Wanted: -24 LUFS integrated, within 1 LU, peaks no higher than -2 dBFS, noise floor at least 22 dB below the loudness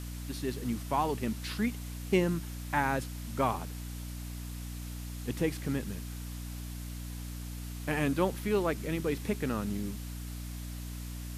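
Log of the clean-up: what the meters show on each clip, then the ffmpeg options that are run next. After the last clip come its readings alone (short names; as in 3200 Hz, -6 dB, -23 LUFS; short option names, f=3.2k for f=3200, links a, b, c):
hum 60 Hz; harmonics up to 300 Hz; hum level -38 dBFS; noise floor -40 dBFS; noise floor target -57 dBFS; loudness -34.5 LUFS; peak -13.5 dBFS; loudness target -24.0 LUFS
-> -af "bandreject=f=60:t=h:w=6,bandreject=f=120:t=h:w=6,bandreject=f=180:t=h:w=6,bandreject=f=240:t=h:w=6,bandreject=f=300:t=h:w=6"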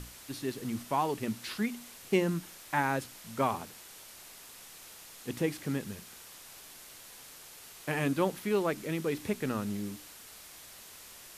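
hum none; noise floor -51 dBFS; noise floor target -56 dBFS
-> -af "afftdn=nr=6:nf=-51"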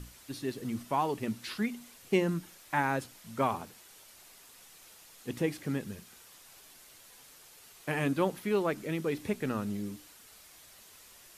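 noise floor -56 dBFS; loudness -33.5 LUFS; peak -14.0 dBFS; loudness target -24.0 LUFS
-> -af "volume=9.5dB"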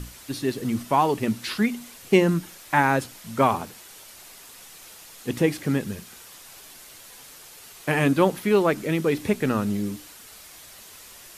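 loudness -24.0 LUFS; peak -4.5 dBFS; noise floor -46 dBFS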